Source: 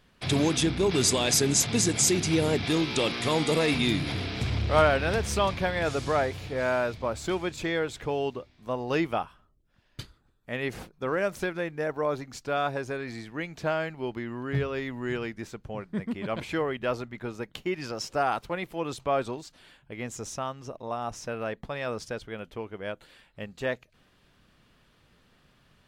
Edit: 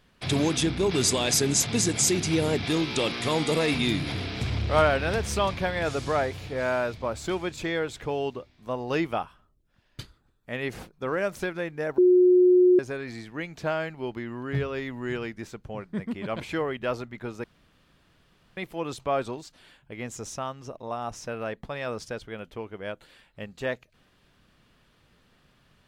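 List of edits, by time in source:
11.98–12.79 s: bleep 362 Hz -14 dBFS
17.44–18.57 s: room tone

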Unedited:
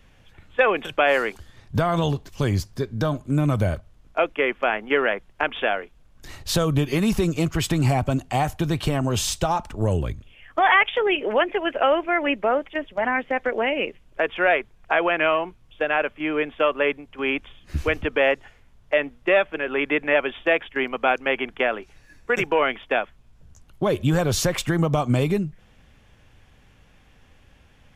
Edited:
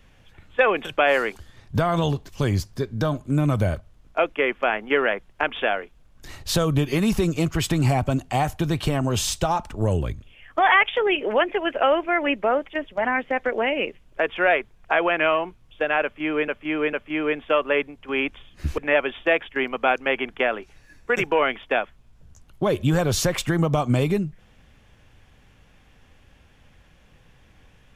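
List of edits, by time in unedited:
16.03–16.48 s: loop, 3 plays
17.88–19.98 s: delete

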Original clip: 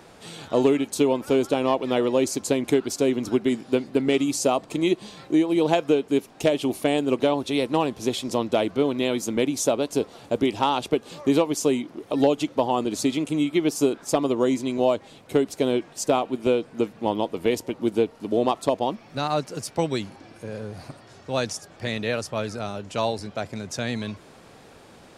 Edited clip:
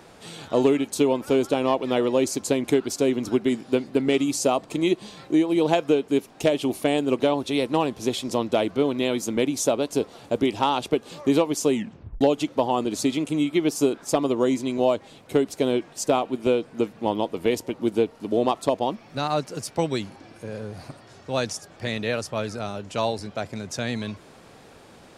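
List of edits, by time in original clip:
11.75 s: tape stop 0.46 s

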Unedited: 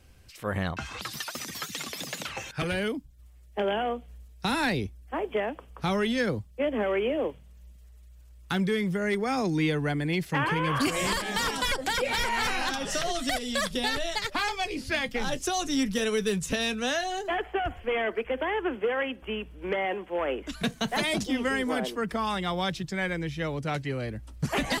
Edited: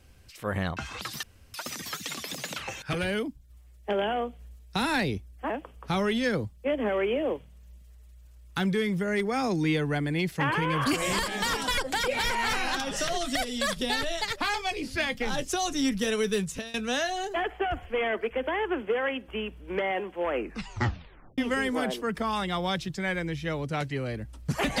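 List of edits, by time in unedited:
1.23 s: insert room tone 0.31 s
5.19–5.44 s: delete
16.32–16.68 s: fade out, to -21.5 dB
20.26 s: tape stop 1.06 s

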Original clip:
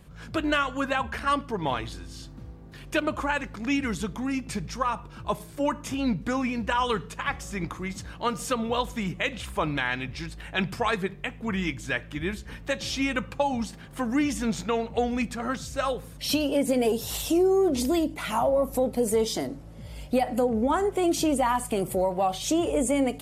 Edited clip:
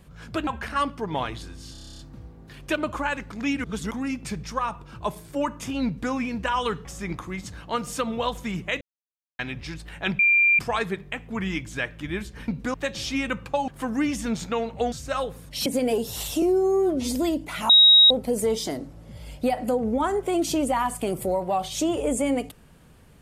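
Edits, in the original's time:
0.47–0.98 s: delete
2.23 s: stutter 0.03 s, 10 plays
3.88–4.15 s: reverse
6.10–6.36 s: copy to 12.60 s
7.09–7.37 s: delete
9.33–9.91 s: mute
10.71 s: add tone 2.38 kHz -15 dBFS 0.40 s
13.54–13.85 s: delete
15.09–15.60 s: delete
16.34–16.60 s: delete
17.36–17.85 s: stretch 1.5×
18.39–18.80 s: bleep 3.8 kHz -10 dBFS

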